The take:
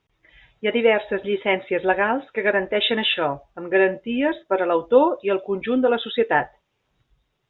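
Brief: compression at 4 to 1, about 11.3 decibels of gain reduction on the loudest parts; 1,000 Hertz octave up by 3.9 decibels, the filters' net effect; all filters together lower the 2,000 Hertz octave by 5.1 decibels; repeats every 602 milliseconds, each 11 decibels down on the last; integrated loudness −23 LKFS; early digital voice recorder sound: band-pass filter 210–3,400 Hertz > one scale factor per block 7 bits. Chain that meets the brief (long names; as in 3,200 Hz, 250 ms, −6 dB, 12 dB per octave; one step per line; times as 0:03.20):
parametric band 1,000 Hz +6.5 dB
parametric band 2,000 Hz −8 dB
downward compressor 4 to 1, threshold −23 dBFS
band-pass filter 210–3,400 Hz
repeating echo 602 ms, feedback 28%, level −11 dB
one scale factor per block 7 bits
level +4.5 dB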